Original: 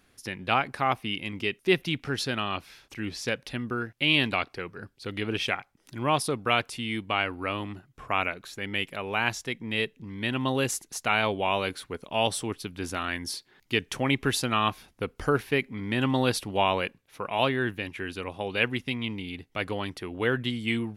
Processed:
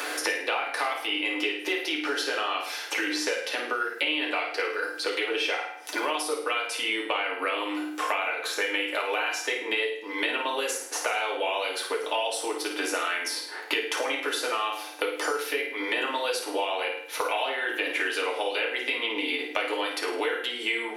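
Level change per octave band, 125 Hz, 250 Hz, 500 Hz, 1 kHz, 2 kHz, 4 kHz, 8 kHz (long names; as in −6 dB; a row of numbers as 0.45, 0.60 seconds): below −35 dB, −5.0 dB, +1.0 dB, 0.0 dB, +2.5 dB, +2.0 dB, +3.0 dB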